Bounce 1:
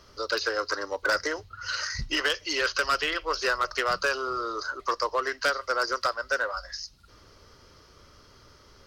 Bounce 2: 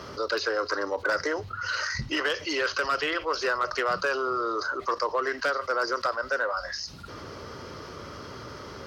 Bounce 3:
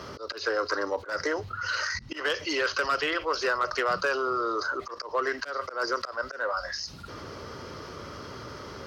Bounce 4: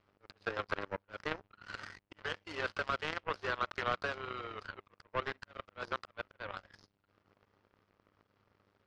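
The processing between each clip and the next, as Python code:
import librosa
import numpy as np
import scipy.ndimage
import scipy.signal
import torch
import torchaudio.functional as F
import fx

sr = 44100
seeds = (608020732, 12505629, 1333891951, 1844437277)

y1 = scipy.signal.sosfilt(scipy.signal.butter(2, 110.0, 'highpass', fs=sr, output='sos'), x)
y1 = fx.high_shelf(y1, sr, hz=2800.0, db=-11.0)
y1 = fx.env_flatten(y1, sr, amount_pct=50)
y2 = fx.auto_swell(y1, sr, attack_ms=153.0)
y3 = fx.dmg_buzz(y2, sr, base_hz=100.0, harmonics=30, level_db=-42.0, tilt_db=-6, odd_only=False)
y3 = fx.power_curve(y3, sr, exponent=3.0)
y3 = scipy.signal.sosfilt(scipy.signal.butter(2, 3200.0, 'lowpass', fs=sr, output='sos'), y3)
y3 = y3 * librosa.db_to_amplitude(1.5)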